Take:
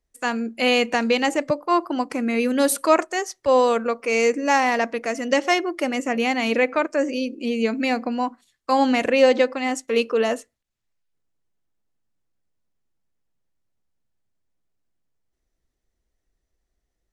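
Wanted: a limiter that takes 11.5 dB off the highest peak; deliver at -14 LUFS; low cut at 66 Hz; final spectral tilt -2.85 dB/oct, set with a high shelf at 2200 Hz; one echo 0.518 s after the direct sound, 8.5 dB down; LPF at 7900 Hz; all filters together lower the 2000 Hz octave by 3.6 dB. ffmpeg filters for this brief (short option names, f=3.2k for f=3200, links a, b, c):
-af "highpass=66,lowpass=7.9k,equalizer=f=2k:t=o:g=-8.5,highshelf=f=2.2k:g=7,alimiter=limit=-15.5dB:level=0:latency=1,aecho=1:1:518:0.376,volume=11dB"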